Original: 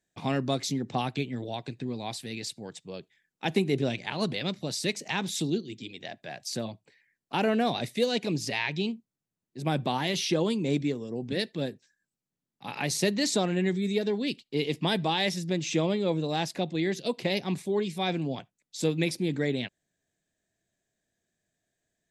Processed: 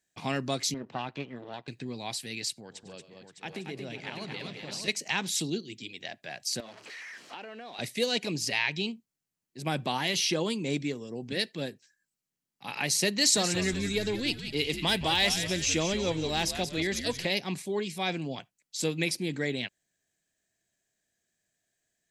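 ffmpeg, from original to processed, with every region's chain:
-filter_complex "[0:a]asettb=1/sr,asplit=3[a][b][c];[a]atrim=end=0.744[d];[b]atrim=start=0.74:end=1.68,asetpts=PTS-STARTPTS,afade=t=in:d=0.004:c=qsin,afade=t=out:st=0.936:d=0.004:c=qsin,aeval=exprs='if(lt(val(0),0),0.251*val(0),val(0))':c=same,highpass=140,lowpass=2.8k,bandreject=f=2.2k:w=13[e];[c]atrim=start=1.676[f];[d][e]acrossfade=d=0.004:c1=hsin:c2=qsin[g];[g][f]acrossfade=d=0.004:c1=qsin:c2=hsin,asettb=1/sr,asplit=3[h][i][j];[h]atrim=end=2.604[k];[i]atrim=start=2.6:end=4.88,asetpts=PTS-STARTPTS,afade=t=in:d=0.004:c=qsin,afade=t=out:st=2.276:d=0.004:c=qsin,highshelf=f=7.2k:g=-11,acompressor=threshold=-40dB:ratio=2:attack=3.2:release=140:knee=1:detection=peak,aecho=1:1:100|140|229|523|608|851:0.211|0.106|0.501|0.188|0.422|0.282,atrim=end_sample=100548[l];[j]atrim=start=4.876[m];[k][l]acrossfade=d=0.004:c1=hsin:c2=qsin[n];[n][m]acrossfade=d=0.004:c1=qsin:c2=hsin,asettb=1/sr,asplit=3[o][p][q];[o]atrim=end=6.604[r];[p]atrim=start=6.6:end=7.79,asetpts=PTS-STARTPTS,afade=t=in:d=0.004:c=qsin,afade=t=out:st=1.186:d=0.004:c=qsin,aeval=exprs='val(0)+0.5*0.0112*sgn(val(0))':c=same,highpass=300,lowpass=4.4k,acompressor=threshold=-39dB:ratio=5:attack=3.2:release=140:knee=1:detection=peak[s];[q]atrim=start=7.786[t];[r][s]acrossfade=d=0.004:c1=hsin:c2=qsin[u];[u][t]acrossfade=d=0.004:c1=qsin:c2=hsin,asettb=1/sr,asplit=3[v][w][x];[v]atrim=end=13.184[y];[w]atrim=start=13.18:end=17.25,asetpts=PTS-STARTPTS,afade=t=in:d=0.004:c=qsin,afade=t=out:st=4.066:d=0.004:c=qsin,highshelf=f=3.7k:g=5,asoftclip=type=hard:threshold=-15.5dB,asplit=6[z][aa][ab][ac][ad][ae];[aa]adelay=181,afreqshift=-94,volume=-9dB[af];[ab]adelay=362,afreqshift=-188,volume=-15.9dB[ag];[ac]adelay=543,afreqshift=-282,volume=-22.9dB[ah];[ad]adelay=724,afreqshift=-376,volume=-29.8dB[ai];[ae]adelay=905,afreqshift=-470,volume=-36.7dB[aj];[z][af][ag][ah][ai][aj]amix=inputs=6:normalize=0,atrim=end_sample=179487[ak];[x]atrim=start=17.246[al];[y][ak]acrossfade=d=0.004:c1=hsin:c2=qsin[am];[am][al]acrossfade=d=0.004:c1=qsin:c2=hsin,tiltshelf=f=1.2k:g=-4.5,bandreject=f=3.6k:w=14"

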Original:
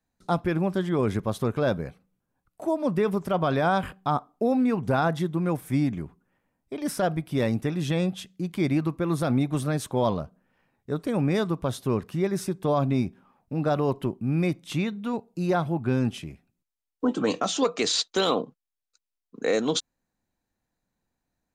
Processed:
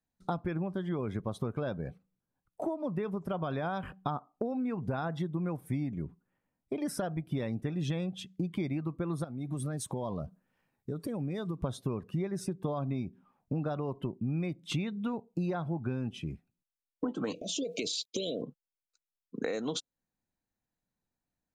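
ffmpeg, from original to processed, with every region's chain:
-filter_complex "[0:a]asettb=1/sr,asplit=3[a][b][c];[a]atrim=end=9.244[d];[b]atrim=start=9.24:end=11.61,asetpts=PTS-STARTPTS,afade=t=in:d=0.004:c=qsin,afade=t=out:st=2.366:d=0.004:c=qsin,highshelf=f=4.8k:g=8,acompressor=threshold=-37dB:ratio=4:attack=3.2:release=140:knee=1:detection=peak[e];[c]atrim=start=11.606[f];[d][e]acrossfade=d=0.004:c1=hsin:c2=qsin[g];[g][f]acrossfade=d=0.004:c1=qsin:c2=hsin,asettb=1/sr,asplit=3[h][i][j];[h]atrim=end=17.334[k];[i]atrim=start=17.33:end=18.42,asetpts=PTS-STARTPTS,afade=t=in:d=0.004:c=qsin,afade=t=out:st=1.086:d=0.004:c=qsin,acompressor=threshold=-31dB:ratio=3:attack=3.2:release=140:knee=1:detection=peak,aeval=exprs='val(0)*gte(abs(val(0)),0.00168)':c=same,asuperstop=centerf=1200:order=20:qfactor=0.81[l];[j]atrim=start=18.416[m];[k][l]acrossfade=d=0.004:c1=hsin:c2=qsin[n];[n][m]acrossfade=d=0.004:c1=qsin:c2=hsin,afftdn=nr=13:nf=-44,acompressor=threshold=-35dB:ratio=12,equalizer=f=150:w=1.5:g=2.5,volume=4dB"

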